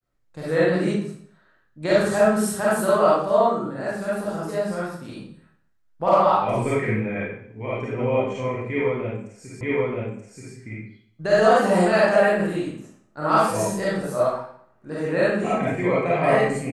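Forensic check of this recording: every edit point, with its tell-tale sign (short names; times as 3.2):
9.61 repeat of the last 0.93 s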